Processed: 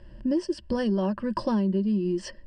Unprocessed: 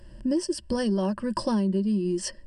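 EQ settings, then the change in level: LPF 3800 Hz 12 dB/oct; 0.0 dB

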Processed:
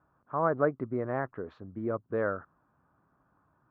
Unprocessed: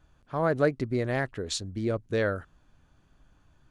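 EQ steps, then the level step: HPF 130 Hz 12 dB/oct; ladder low-pass 1400 Hz, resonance 50%; +5.5 dB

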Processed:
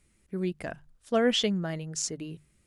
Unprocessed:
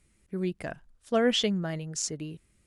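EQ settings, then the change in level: notches 50/100/150 Hz; 0.0 dB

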